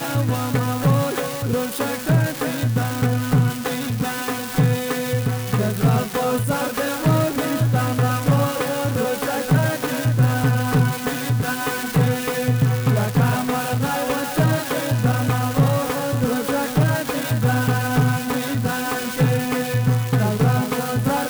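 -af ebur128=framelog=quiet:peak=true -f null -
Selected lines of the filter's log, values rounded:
Integrated loudness:
  I:         -20.6 LUFS
  Threshold: -30.6 LUFS
Loudness range:
  LRA:         1.4 LU
  Threshold: -40.6 LUFS
  LRA low:   -21.5 LUFS
  LRA high:  -20.1 LUFS
True peak:
  Peak:       -7.5 dBFS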